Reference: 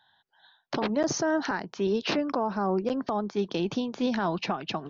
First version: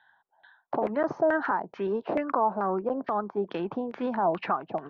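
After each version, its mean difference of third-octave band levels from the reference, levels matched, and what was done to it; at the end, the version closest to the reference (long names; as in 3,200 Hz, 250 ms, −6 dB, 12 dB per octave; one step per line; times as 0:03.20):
6.0 dB: low-shelf EQ 240 Hz −9.5 dB
auto-filter low-pass saw down 2.3 Hz 580–2,200 Hz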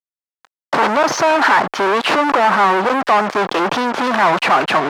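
9.5 dB: fuzz pedal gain 50 dB, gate −48 dBFS
resonant band-pass 1,100 Hz, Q 1.1
level +6 dB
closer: first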